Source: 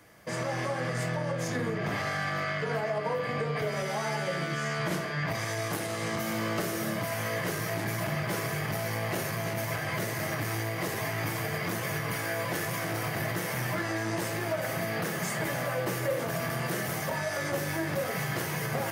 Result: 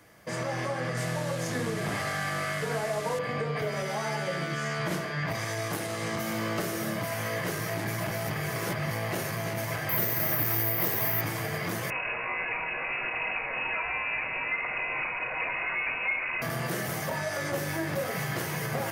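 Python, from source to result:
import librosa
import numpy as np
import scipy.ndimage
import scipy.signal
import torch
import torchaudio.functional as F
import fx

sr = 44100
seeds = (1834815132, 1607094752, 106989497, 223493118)

y = fx.delta_mod(x, sr, bps=64000, step_db=-33.0, at=(0.97, 3.19))
y = fx.resample_bad(y, sr, factor=3, down='filtered', up='zero_stuff', at=(9.89, 11.21))
y = fx.freq_invert(y, sr, carrier_hz=2700, at=(11.9, 16.42))
y = fx.edit(y, sr, fx.reverse_span(start_s=8.11, length_s=0.8), tone=tone)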